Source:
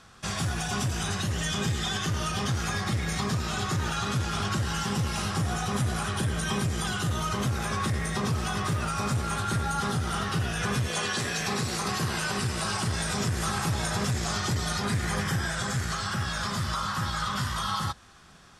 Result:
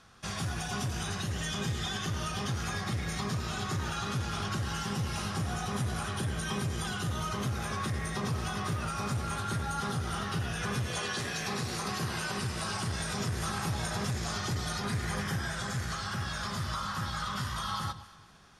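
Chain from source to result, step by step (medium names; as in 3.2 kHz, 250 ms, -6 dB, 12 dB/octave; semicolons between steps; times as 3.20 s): band-stop 7.7 kHz, Q 9.4; echo whose repeats swap between lows and highs 114 ms, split 1.1 kHz, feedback 55%, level -11.5 dB; trim -5 dB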